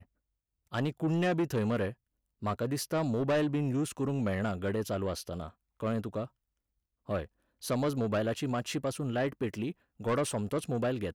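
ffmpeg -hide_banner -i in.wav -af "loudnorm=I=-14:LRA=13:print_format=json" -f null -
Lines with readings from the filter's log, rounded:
"input_i" : "-32.9",
"input_tp" : "-23.8",
"input_lra" : "3.1",
"input_thresh" : "-43.1",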